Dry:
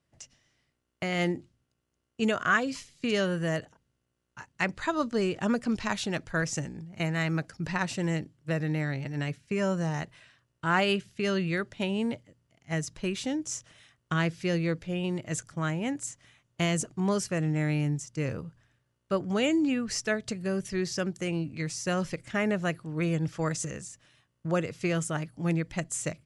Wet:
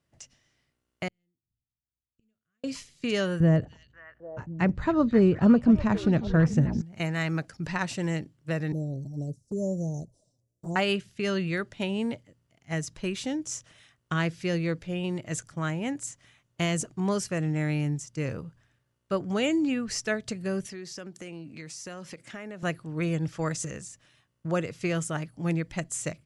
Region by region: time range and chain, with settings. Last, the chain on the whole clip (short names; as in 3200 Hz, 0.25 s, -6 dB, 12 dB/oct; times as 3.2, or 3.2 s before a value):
1.08–2.64 flipped gate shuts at -30 dBFS, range -28 dB + passive tone stack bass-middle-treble 10-0-1 + resonator 110 Hz, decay 0.36 s, mix 50%
3.4–6.82 HPF 44 Hz + tilt -4.5 dB/oct + delay with a stepping band-pass 0.266 s, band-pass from 4300 Hz, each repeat -1.4 oct, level -4.5 dB
8.72–10.76 Chebyshev band-stop 620–5900 Hz, order 3 + envelope flanger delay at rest 11.6 ms, full sweep at -28 dBFS
20.66–22.63 HPF 180 Hz + compressor 4:1, threshold -38 dBFS
whole clip: dry